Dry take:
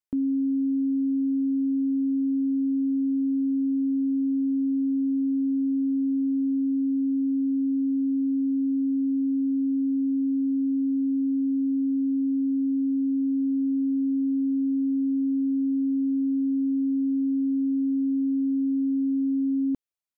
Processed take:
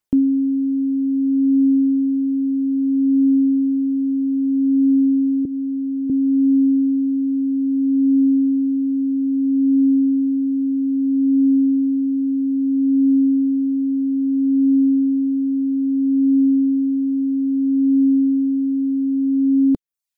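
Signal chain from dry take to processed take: 5.45–6.10 s: high-pass 280 Hz 12 dB/octave; reverb removal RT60 0.56 s; phaser 0.61 Hz, delay 2.1 ms, feedback 31%; trim +9 dB

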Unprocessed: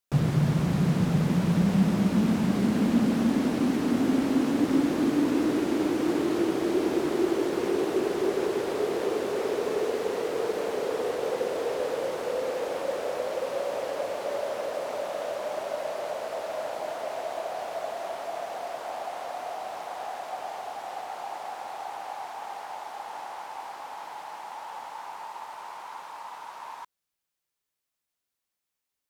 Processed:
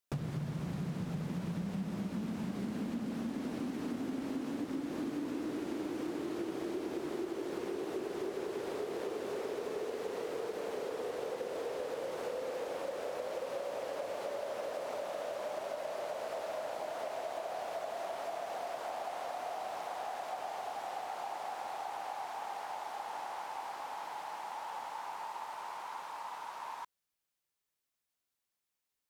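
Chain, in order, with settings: compression, threshold -33 dBFS, peak gain reduction 15 dB; trim -2.5 dB

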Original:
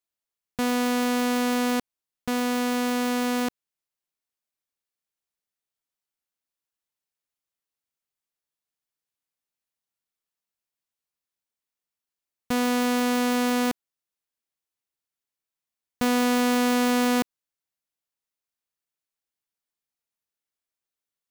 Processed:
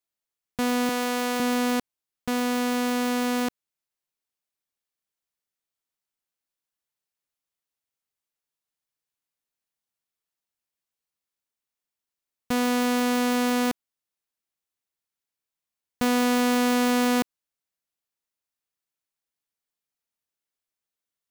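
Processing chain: 0.89–1.40 s: high-pass 310 Hz

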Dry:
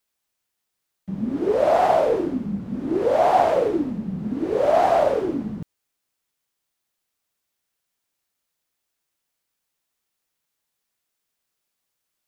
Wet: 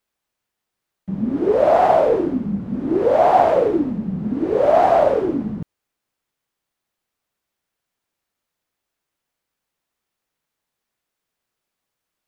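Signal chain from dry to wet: treble shelf 3.1 kHz -9 dB; trim +4 dB

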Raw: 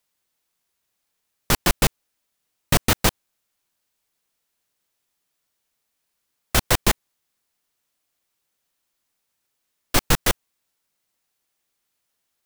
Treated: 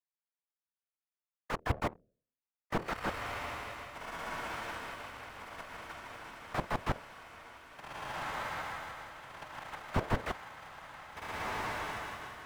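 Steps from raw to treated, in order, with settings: gate -12 dBFS, range -33 dB; treble shelf 11 kHz -11 dB; de-hum 79.65 Hz, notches 7; whisper effect; waveshaping leveller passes 2; three-band isolator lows -16 dB, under 590 Hz, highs -16 dB, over 2.4 kHz; on a send: echo that smears into a reverb 1632 ms, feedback 51%, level -10 dB; on the sum: slew-rate limiter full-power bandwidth 4.2 Hz; trim +17.5 dB

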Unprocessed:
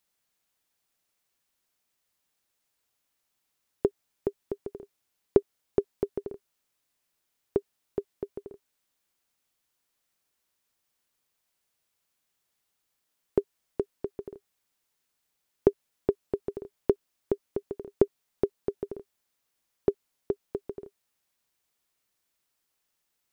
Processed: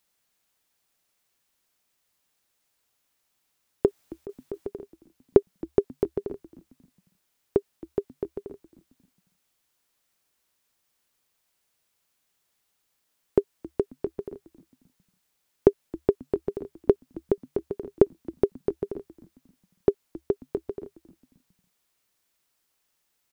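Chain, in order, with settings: 3.86–4.67 s: compressor with a negative ratio -36 dBFS, ratio -1; frequency-shifting echo 269 ms, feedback 40%, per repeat -73 Hz, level -19.5 dB; trim +4 dB

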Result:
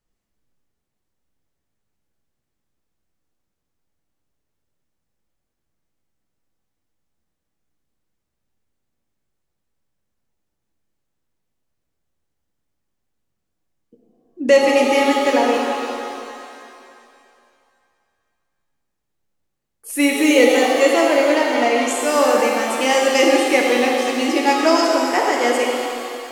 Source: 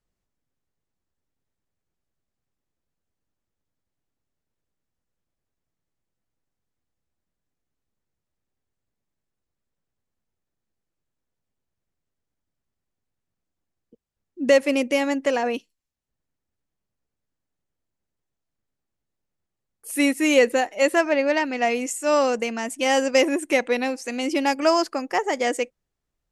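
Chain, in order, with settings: 20.25–21.87 s: comb of notches 850 Hz; pitch-shifted reverb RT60 2.5 s, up +7 st, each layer -8 dB, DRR -1 dB; trim +2 dB

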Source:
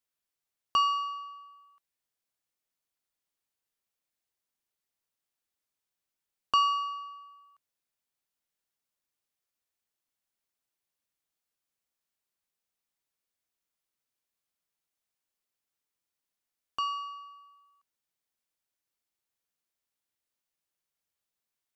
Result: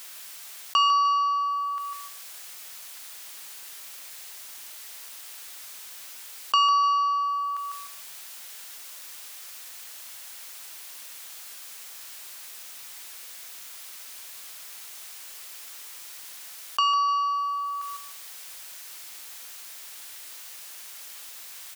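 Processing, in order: high-pass 1.3 kHz 6 dB/octave; feedback delay 150 ms, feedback 22%, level -12.5 dB; level flattener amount 70%; trim +5.5 dB

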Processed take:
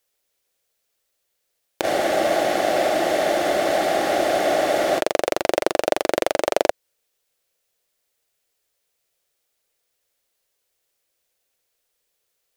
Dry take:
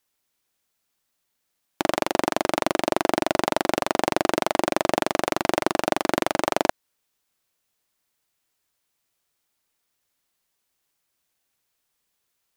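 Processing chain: graphic EQ 125/250/500/1000 Hz -6/-10/+10/-7 dB; companded quantiser 8-bit; spectral freeze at 1.86 s, 3.12 s; trim +1.5 dB

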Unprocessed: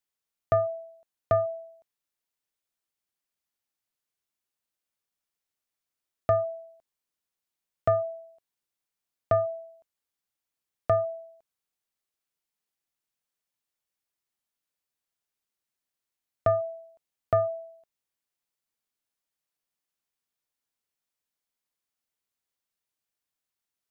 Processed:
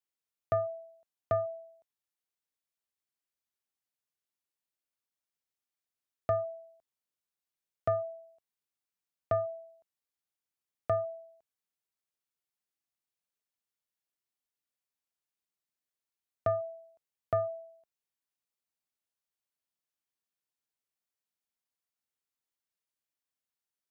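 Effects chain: high-pass 49 Hz; trim -6 dB

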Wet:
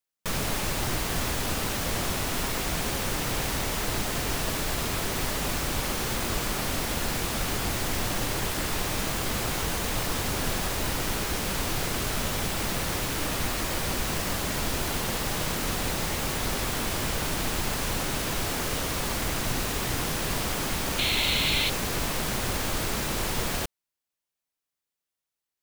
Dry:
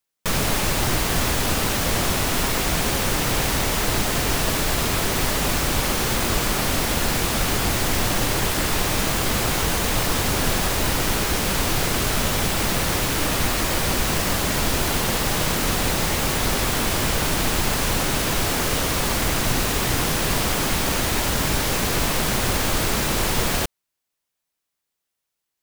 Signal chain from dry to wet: painted sound noise, 20.98–21.70 s, 2–4.4 kHz -20 dBFS; trim -7 dB

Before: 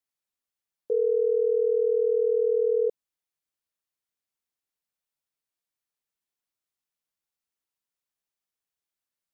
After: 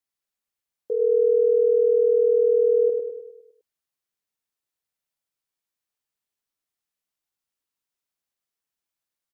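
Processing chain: feedback delay 102 ms, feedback 52%, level -5 dB

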